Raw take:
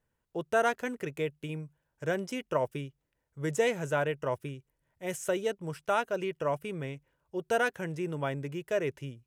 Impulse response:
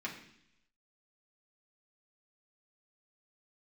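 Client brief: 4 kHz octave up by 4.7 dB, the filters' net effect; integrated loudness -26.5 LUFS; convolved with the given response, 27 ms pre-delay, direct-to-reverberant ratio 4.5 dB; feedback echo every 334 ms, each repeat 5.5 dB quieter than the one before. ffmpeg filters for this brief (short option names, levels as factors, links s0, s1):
-filter_complex "[0:a]equalizer=f=4000:t=o:g=7,aecho=1:1:334|668|1002|1336|1670|2004|2338:0.531|0.281|0.149|0.079|0.0419|0.0222|0.0118,asplit=2[s0][s1];[1:a]atrim=start_sample=2205,adelay=27[s2];[s1][s2]afir=irnorm=-1:irlink=0,volume=0.473[s3];[s0][s3]amix=inputs=2:normalize=0,volume=1.58"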